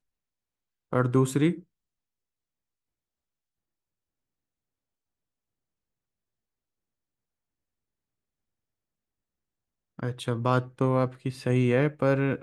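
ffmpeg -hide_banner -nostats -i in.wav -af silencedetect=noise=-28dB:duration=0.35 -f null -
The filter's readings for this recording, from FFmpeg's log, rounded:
silence_start: 0.00
silence_end: 0.93 | silence_duration: 0.93
silence_start: 1.52
silence_end: 9.99 | silence_duration: 8.48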